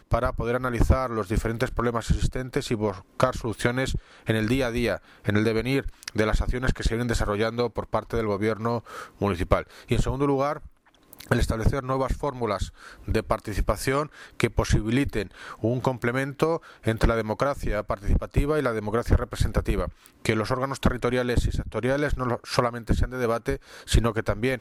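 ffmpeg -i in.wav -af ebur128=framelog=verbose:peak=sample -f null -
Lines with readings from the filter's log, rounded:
Integrated loudness:
  I:         -26.5 LUFS
  Threshold: -36.6 LUFS
Loudness range:
  LRA:         1.2 LU
  Threshold: -46.7 LUFS
  LRA low:   -27.4 LUFS
  LRA high:  -26.1 LUFS
Sample peak:
  Peak:       -8.5 dBFS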